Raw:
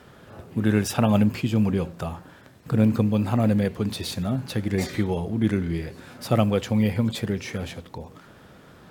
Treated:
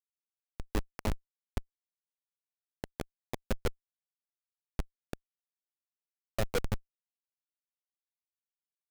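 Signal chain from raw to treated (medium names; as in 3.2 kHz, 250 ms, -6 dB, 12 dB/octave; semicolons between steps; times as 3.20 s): LFO band-pass sine 6.2 Hz 500–3500 Hz; Schmitt trigger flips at -24.5 dBFS; trim +10.5 dB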